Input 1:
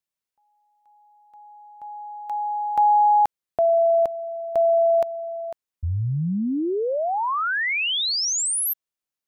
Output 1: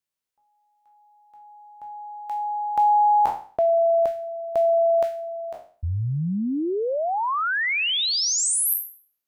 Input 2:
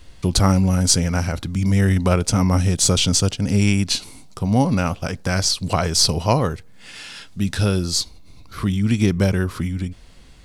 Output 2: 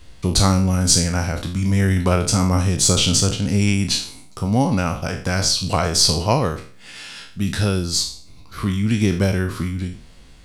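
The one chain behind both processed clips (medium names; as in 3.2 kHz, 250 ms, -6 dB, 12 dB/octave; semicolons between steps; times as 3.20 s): spectral sustain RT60 0.44 s; trim -1 dB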